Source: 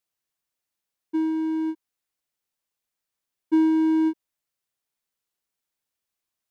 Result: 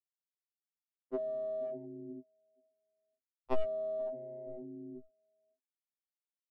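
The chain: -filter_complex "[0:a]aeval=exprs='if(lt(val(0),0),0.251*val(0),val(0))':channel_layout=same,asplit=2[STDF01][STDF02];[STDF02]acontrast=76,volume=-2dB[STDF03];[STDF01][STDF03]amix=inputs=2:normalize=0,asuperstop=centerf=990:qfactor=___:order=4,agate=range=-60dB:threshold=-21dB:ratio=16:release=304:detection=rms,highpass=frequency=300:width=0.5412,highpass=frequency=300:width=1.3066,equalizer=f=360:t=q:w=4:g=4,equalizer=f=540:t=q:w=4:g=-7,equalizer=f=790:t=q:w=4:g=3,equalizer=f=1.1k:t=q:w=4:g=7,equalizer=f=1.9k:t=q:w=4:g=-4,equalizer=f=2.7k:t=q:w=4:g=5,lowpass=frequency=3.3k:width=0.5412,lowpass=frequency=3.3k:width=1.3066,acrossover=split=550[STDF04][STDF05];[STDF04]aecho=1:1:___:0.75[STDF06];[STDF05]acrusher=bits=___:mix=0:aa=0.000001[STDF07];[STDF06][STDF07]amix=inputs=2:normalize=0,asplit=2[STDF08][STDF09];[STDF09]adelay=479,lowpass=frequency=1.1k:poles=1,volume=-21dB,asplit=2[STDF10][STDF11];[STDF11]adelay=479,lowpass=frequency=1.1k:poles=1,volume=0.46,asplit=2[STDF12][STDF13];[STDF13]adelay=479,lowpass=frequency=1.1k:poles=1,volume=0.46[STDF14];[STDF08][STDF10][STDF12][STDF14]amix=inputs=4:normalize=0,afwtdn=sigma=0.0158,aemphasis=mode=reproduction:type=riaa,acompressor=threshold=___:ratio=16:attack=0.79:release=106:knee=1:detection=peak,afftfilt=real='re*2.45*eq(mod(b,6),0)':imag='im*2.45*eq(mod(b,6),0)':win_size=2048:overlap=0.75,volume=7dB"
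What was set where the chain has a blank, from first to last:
3.5, 4.4, 3, -27dB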